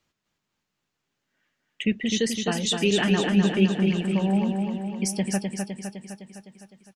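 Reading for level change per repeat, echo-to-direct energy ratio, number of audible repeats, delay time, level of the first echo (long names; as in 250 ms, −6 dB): −4.5 dB, −2.5 dB, 7, 255 ms, −4.5 dB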